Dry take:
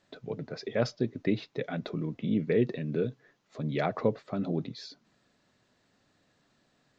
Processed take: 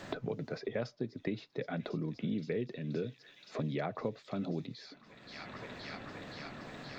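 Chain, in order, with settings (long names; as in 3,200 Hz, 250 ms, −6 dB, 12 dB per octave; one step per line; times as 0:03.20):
delay with a high-pass on its return 523 ms, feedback 75%, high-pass 3,300 Hz, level −13 dB
multiband upward and downward compressor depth 100%
level −6.5 dB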